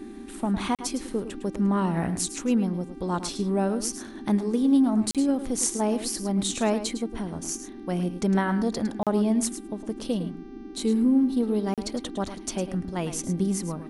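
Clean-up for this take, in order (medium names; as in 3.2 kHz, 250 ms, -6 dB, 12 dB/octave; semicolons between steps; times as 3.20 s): de-hum 392.5 Hz, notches 16; interpolate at 0.75/5.11/9.03/11.74 s, 37 ms; noise print and reduce 30 dB; inverse comb 107 ms -11.5 dB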